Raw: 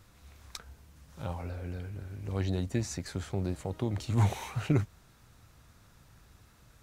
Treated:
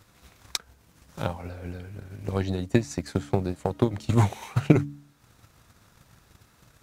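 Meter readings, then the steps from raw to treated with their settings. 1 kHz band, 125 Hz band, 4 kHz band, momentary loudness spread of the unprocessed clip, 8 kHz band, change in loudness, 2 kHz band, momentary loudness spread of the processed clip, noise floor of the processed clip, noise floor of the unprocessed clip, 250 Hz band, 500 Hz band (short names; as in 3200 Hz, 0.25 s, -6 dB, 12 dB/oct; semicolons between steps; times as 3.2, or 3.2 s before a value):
+7.0 dB, +4.5 dB, +6.5 dB, 14 LU, +4.0 dB, +6.0 dB, +6.5 dB, 15 LU, -61 dBFS, -60 dBFS, +8.0 dB, +9.0 dB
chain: low shelf 69 Hz -11 dB; transient shaper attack +11 dB, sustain -5 dB; de-hum 71.97 Hz, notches 4; gain +3 dB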